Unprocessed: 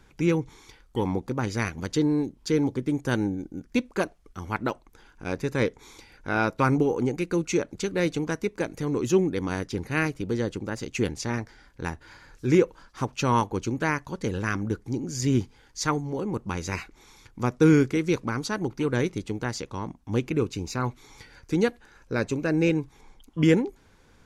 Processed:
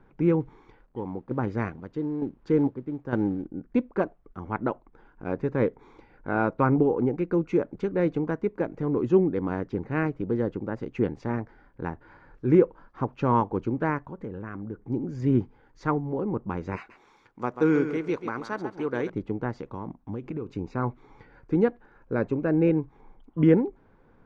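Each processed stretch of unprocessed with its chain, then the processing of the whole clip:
0:00.40–0:03.47: square-wave tremolo 1.1 Hz, depth 60% + log-companded quantiser 6 bits
0:14.06–0:14.90: parametric band 4,600 Hz −8 dB 0.76 octaves + downward compressor 2 to 1, threshold −38 dBFS
0:16.76–0:19.10: RIAA equalisation recording + feedback echo at a low word length 138 ms, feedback 35%, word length 7 bits, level −9 dB
0:19.60–0:20.57: high-shelf EQ 5,300 Hz +10 dB + downward compressor 12 to 1, threshold −29 dBFS
whole clip: low-pass filter 1,200 Hz 12 dB per octave; parametric band 63 Hz −12 dB 0.86 octaves; level +1.5 dB

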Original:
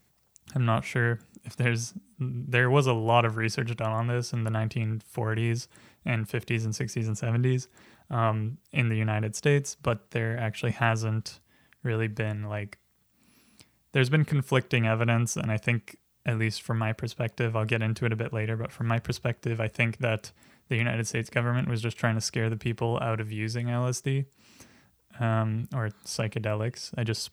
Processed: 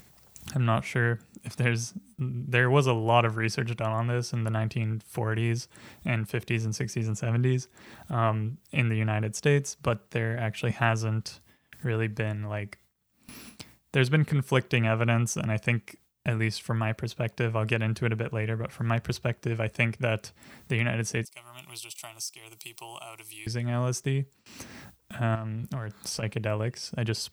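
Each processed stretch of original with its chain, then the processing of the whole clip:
0:21.25–0:23.47: phaser with its sweep stopped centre 330 Hz, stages 8 + de-essing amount 60% + first difference
0:25.35–0:26.23: downward compressor 8 to 1, threshold −33 dBFS + leveller curve on the samples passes 1
whole clip: noise gate with hold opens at −49 dBFS; upward compression, threshold −31 dBFS

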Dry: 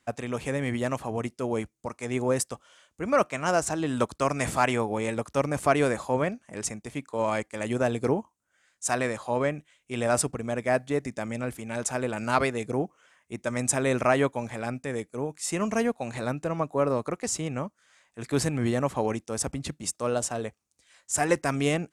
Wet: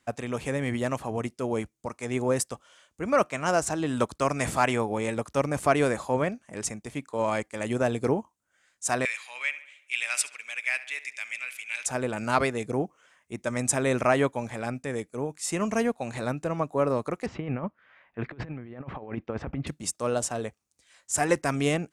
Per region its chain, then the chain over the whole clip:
0:09.05–0:11.86: high-pass with resonance 2,400 Hz, resonance Q 4.5 + feedback echo with a low-pass in the loop 70 ms, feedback 54%, low-pass 4,200 Hz, level −14.5 dB
0:17.26–0:19.67: low-pass filter 2,600 Hz 24 dB per octave + compressor whose output falls as the input rises −33 dBFS, ratio −0.5
whole clip: no processing

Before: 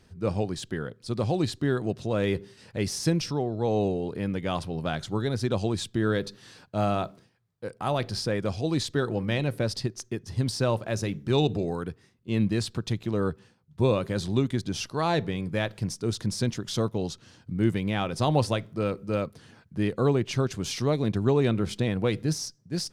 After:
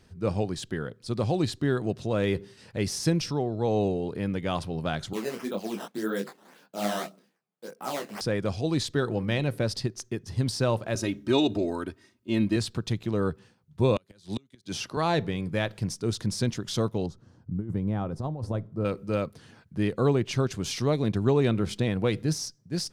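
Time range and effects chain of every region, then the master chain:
0:05.13–0:08.21: sample-and-hold swept by an LFO 11×, swing 160% 1.8 Hz + Chebyshev high-pass filter 180 Hz, order 4 + micro pitch shift up and down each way 40 cents
0:10.95–0:12.56: high-pass filter 110 Hz + comb filter 3.2 ms, depth 81%
0:13.96–0:14.97: high-pass filter 150 Hz 6 dB per octave + gate with flip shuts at −20 dBFS, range −34 dB + multiband upward and downward compressor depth 70%
0:17.06–0:18.85: drawn EQ curve 120 Hz 0 dB, 1,200 Hz −8 dB, 2,700 Hz −23 dB, 5,300 Hz −18 dB + compressor whose output falls as the input rises −28 dBFS, ratio −0.5
whole clip: no processing

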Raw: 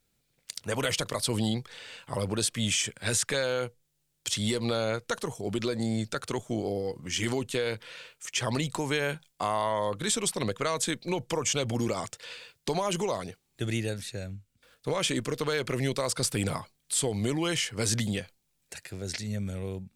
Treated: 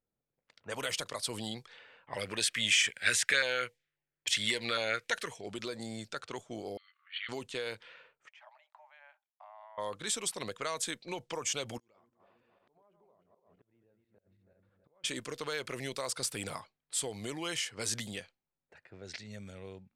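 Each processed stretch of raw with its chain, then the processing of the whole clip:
0:02.07–0:05.46: parametric band 1,900 Hz +14 dB 1.8 octaves + auto-filter notch saw down 3.7 Hz 740–1,500 Hz
0:06.77–0:07.29: linear-phase brick-wall band-pass 1,100–4,500 Hz + upward compression, threshold −53 dBFS
0:08.28–0:09.78: mu-law and A-law mismatch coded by A + downward compressor 3 to 1, threshold −39 dBFS + Chebyshev high-pass with heavy ripple 590 Hz, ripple 6 dB
0:11.78–0:15.04: feedback delay that plays each chunk backwards 162 ms, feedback 43%, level −6.5 dB + gate with flip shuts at −25 dBFS, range −26 dB + downward compressor 5 to 1, threshold −52 dBFS
whole clip: low-pass that shuts in the quiet parts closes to 820 Hz, open at −26 dBFS; low-shelf EQ 330 Hz −11.5 dB; level −5 dB

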